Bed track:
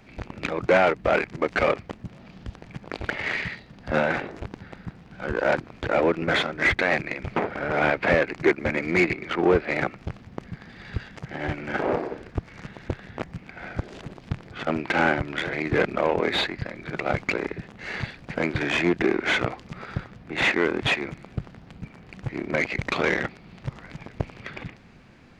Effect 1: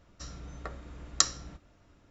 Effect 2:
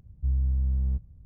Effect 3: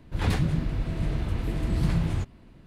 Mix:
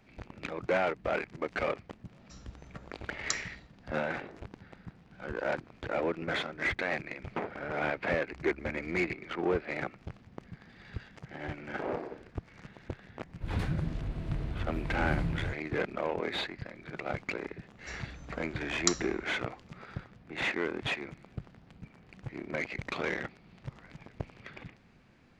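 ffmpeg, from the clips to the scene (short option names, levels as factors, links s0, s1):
-filter_complex "[1:a]asplit=2[s0][s1];[0:a]volume=0.316[s2];[2:a]acompressor=threshold=0.02:ratio=6:attack=3.2:release=140:knee=1:detection=peak[s3];[3:a]highshelf=f=4500:g=-7.5[s4];[s1]bandreject=f=5200:w=18[s5];[s0]atrim=end=2.1,asetpts=PTS-STARTPTS,volume=0.335,afade=t=in:d=0.004:c=hsin,afade=t=out:st=2.096:d=0.004:c=hsin,adelay=2100[s6];[s3]atrim=end=1.25,asetpts=PTS-STARTPTS,volume=0.141,afade=t=in:d=0.004:c=hsin,afade=t=out:st=1.246:d=0.004:c=hsin,adelay=357210S[s7];[s4]atrim=end=2.66,asetpts=PTS-STARTPTS,volume=0.422,afade=t=in:d=0.004:c=hsin,afade=t=out:st=2.656:d=0.004:c=hsin,adelay=13290[s8];[s5]atrim=end=2.1,asetpts=PTS-STARTPTS,volume=0.668,afade=t=in:d=0.004:c=hsin,afade=t=out:st=2.096:d=0.004:c=hsin,adelay=17670[s9];[s2][s6][s7][s8][s9]amix=inputs=5:normalize=0"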